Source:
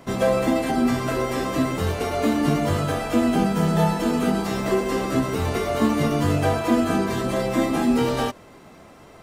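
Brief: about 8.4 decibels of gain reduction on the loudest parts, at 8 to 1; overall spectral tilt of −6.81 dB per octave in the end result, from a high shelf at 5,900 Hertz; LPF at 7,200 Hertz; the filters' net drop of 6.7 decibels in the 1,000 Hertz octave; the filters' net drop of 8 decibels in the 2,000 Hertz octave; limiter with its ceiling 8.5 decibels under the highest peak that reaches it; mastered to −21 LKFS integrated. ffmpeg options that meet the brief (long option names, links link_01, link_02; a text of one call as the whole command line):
ffmpeg -i in.wav -af "lowpass=7200,equalizer=frequency=1000:width_type=o:gain=-7.5,equalizer=frequency=2000:width_type=o:gain=-7,highshelf=frequency=5900:gain=-7,acompressor=threshold=-25dB:ratio=8,volume=11dB,alimiter=limit=-12.5dB:level=0:latency=1" out.wav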